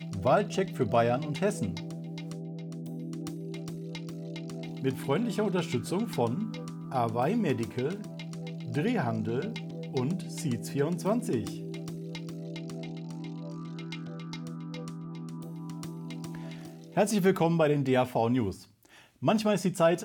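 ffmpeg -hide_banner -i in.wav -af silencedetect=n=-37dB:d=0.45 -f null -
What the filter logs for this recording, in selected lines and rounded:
silence_start: 18.55
silence_end: 19.22 | silence_duration: 0.68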